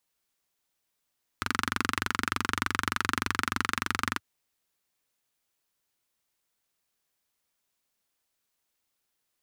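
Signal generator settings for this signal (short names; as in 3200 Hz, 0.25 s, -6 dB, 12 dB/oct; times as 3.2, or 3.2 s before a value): single-cylinder engine model, steady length 2.78 s, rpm 2800, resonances 96/240/1300 Hz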